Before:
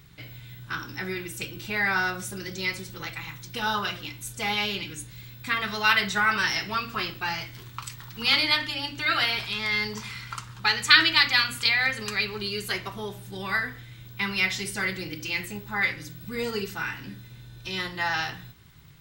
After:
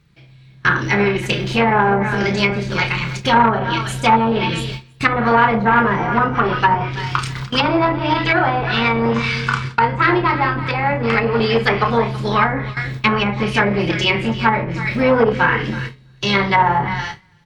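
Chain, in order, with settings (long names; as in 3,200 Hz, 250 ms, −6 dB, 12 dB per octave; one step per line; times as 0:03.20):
high-shelf EQ 4,600 Hz −10.5 dB
on a send: repeating echo 355 ms, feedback 24%, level −14.5 dB
on the sum: dynamic equaliser 840 Hz, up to +6 dB, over −43 dBFS, Q 1.4
double-tracking delay 33 ms −7 dB
treble cut that deepens with the level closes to 690 Hz, closed at −23 dBFS
wrong playback speed 44.1 kHz file played as 48 kHz
noise gate with hold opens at −31 dBFS
flanger 0.38 Hz, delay 5.6 ms, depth 2.9 ms, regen −88%
boost into a limiter +22 dB
saturating transformer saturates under 630 Hz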